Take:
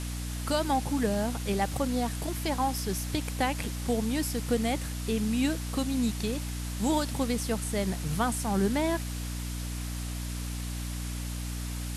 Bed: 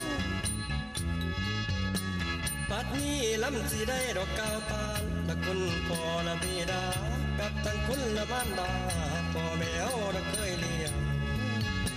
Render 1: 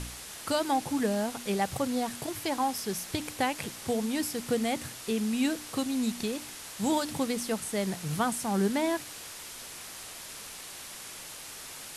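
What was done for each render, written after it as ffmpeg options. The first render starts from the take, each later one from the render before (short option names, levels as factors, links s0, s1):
-af "bandreject=f=60:t=h:w=4,bandreject=f=120:t=h:w=4,bandreject=f=180:t=h:w=4,bandreject=f=240:t=h:w=4,bandreject=f=300:t=h:w=4"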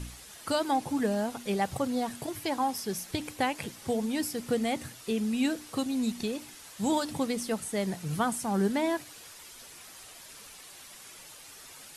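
-af "afftdn=nr=8:nf=-44"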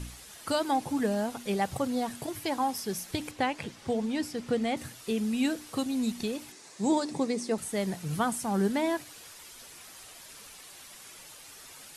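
-filter_complex "[0:a]asettb=1/sr,asplit=3[s0][s1][s2];[s0]atrim=end=3.314[s3];[s1]atrim=start=3.31:end=4.77,asetpts=PTS-STARTPTS,afade=t=in:d=0.004:c=qsin,afade=t=out:st=1.456:d=0.004:c=qsin,adynamicsmooth=sensitivity=0.5:basefreq=7400[s4];[s2]atrim=start=4.766[s5];[s3][s4]acrossfade=d=0.004:c1=hsin:c2=qsin[s6];[s6][s5]acrossfade=d=0.004:c1=qsin:c2=hsin,asettb=1/sr,asplit=3[s7][s8][s9];[s7]atrim=end=6.524[s10];[s8]atrim=start=6.52:end=7.58,asetpts=PTS-STARTPTS,afade=t=in:d=0.004:c=qsin,afade=t=out:st=1.056:d=0.004:c=qsin,highpass=f=130:w=0.5412,highpass=f=130:w=1.3066,equalizer=f=380:t=q:w=4:g=9,equalizer=f=1400:t=q:w=4:g=-6,equalizer=f=3100:t=q:w=4:g=-9,lowpass=f=8700:w=0.5412,lowpass=f=8700:w=1.3066[s11];[s9]atrim=start=7.576[s12];[s10][s11]acrossfade=d=0.004:c1=hsin:c2=qsin[s13];[s13][s12]acrossfade=d=0.004:c1=qsin:c2=hsin"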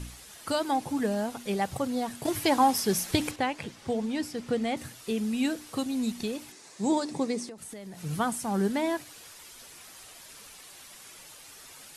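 -filter_complex "[0:a]asettb=1/sr,asplit=3[s0][s1][s2];[s0]atrim=end=2.254[s3];[s1]atrim=start=2.25:end=3.36,asetpts=PTS-STARTPTS,afade=t=in:d=0.004:c=qsin,afade=t=out:st=1.106:d=0.004:c=qsin,acontrast=87[s4];[s2]atrim=start=3.356[s5];[s3][s4]acrossfade=d=0.004:c1=hsin:c2=qsin[s6];[s6][s5]acrossfade=d=0.004:c1=qsin:c2=hsin,asettb=1/sr,asplit=3[s7][s8][s9];[s7]atrim=end=7.454[s10];[s8]atrim=start=7.45:end=8.04,asetpts=PTS-STARTPTS,afade=t=in:d=0.004:c=qsin,afade=t=out:st=0.586:d=0.004:c=qsin,acompressor=threshold=0.0126:ratio=20:attack=3.2:release=140:knee=1:detection=peak[s11];[s9]atrim=start=8.036[s12];[s10][s11]acrossfade=d=0.004:c1=hsin:c2=qsin[s13];[s13][s12]acrossfade=d=0.004:c1=qsin:c2=hsin"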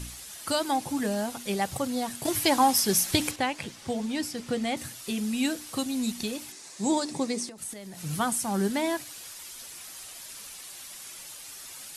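-af "highshelf=f=3100:g=7.5,bandreject=f=450:w=12"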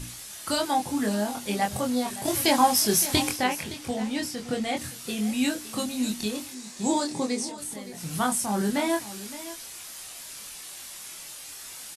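-filter_complex "[0:a]asplit=2[s0][s1];[s1]adelay=24,volume=0.708[s2];[s0][s2]amix=inputs=2:normalize=0,aecho=1:1:566:0.178"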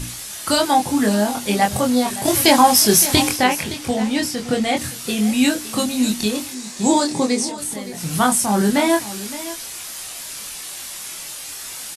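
-af "volume=2.82,alimiter=limit=0.794:level=0:latency=1"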